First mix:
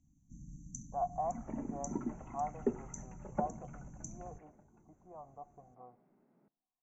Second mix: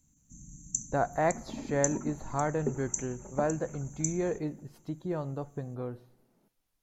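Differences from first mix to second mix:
speech: remove vocal tract filter a; master: remove air absorption 210 m

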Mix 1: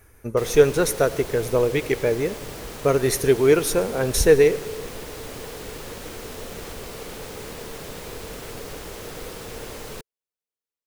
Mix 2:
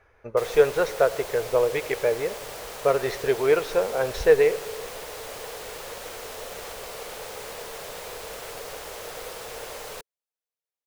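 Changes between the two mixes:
speech: add air absorption 240 m; master: add resonant low shelf 400 Hz -10.5 dB, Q 1.5

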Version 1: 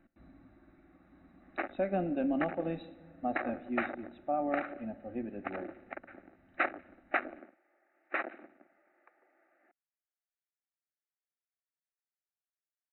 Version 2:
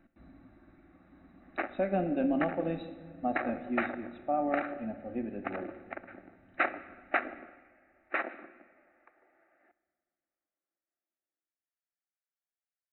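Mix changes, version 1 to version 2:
speech: send +7.0 dB; background: send on

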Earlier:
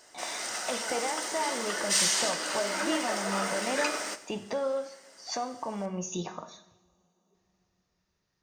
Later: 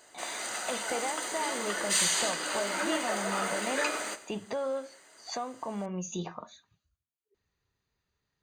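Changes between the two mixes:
speech: send off; master: add Butterworth band-stop 5400 Hz, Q 4.8

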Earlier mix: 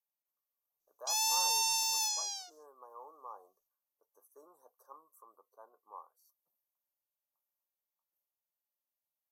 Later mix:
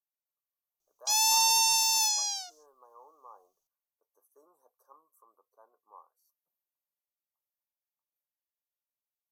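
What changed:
speech -4.0 dB; background +6.5 dB

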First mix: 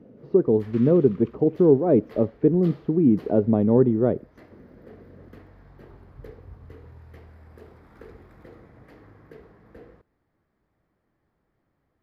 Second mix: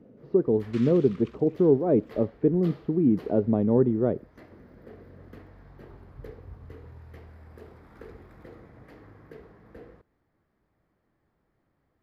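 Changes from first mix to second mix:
speech -3.5 dB; second sound: add tilt +4 dB/oct

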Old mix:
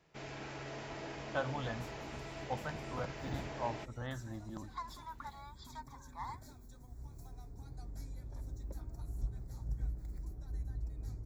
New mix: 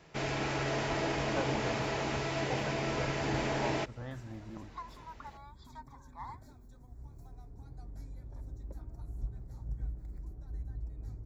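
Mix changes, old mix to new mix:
speech: add high shelf 2200 Hz -11 dB; first sound +12.0 dB; second sound: add high shelf 3000 Hz -9.5 dB

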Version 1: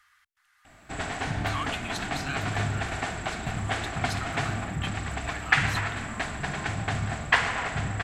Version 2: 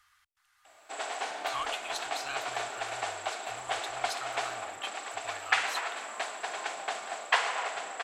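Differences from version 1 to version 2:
background: add HPF 470 Hz 24 dB/oct; master: add bell 1800 Hz -6.5 dB 0.89 oct

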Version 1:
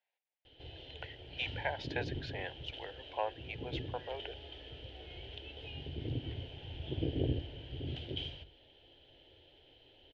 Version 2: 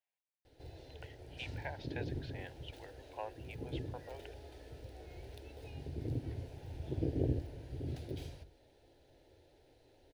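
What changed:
speech -8.0 dB; background: remove synth low-pass 3100 Hz, resonance Q 15

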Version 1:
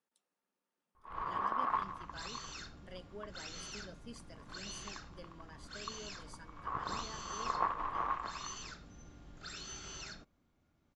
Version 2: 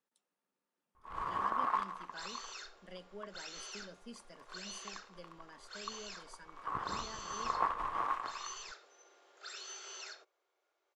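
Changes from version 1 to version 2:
first sound: remove air absorption 150 m; second sound: add steep high-pass 370 Hz 72 dB/oct

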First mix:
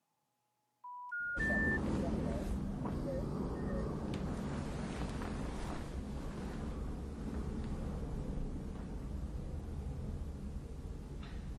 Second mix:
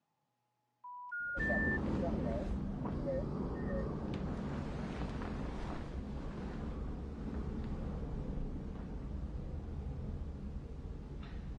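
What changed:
speech +4.5 dB; master: add air absorption 100 m

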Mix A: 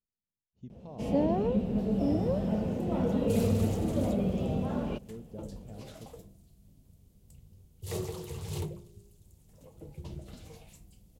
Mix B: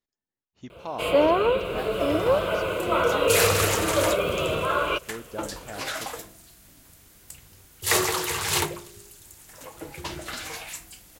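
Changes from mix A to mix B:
first sound: add fixed phaser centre 1200 Hz, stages 8; master: remove EQ curve 210 Hz 0 dB, 300 Hz -12 dB, 450 Hz -8 dB, 1600 Hz -30 dB, 3000 Hz -21 dB

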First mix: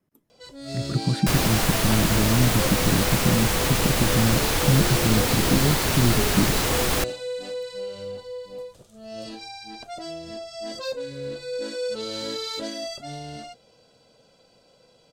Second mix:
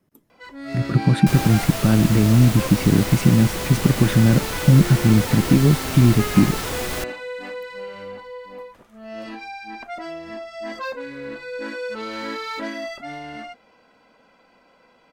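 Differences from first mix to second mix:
speech +7.0 dB; first sound: add graphic EQ 125/250/500/1000/2000/4000/8000 Hz -11/+8/-5/+9/+12/-7/-10 dB; second sound -5.0 dB

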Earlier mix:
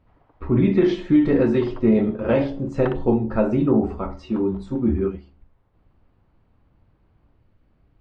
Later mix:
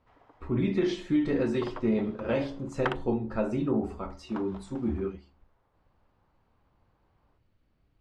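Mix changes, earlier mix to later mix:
speech -10.0 dB; master: remove tape spacing loss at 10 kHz 21 dB

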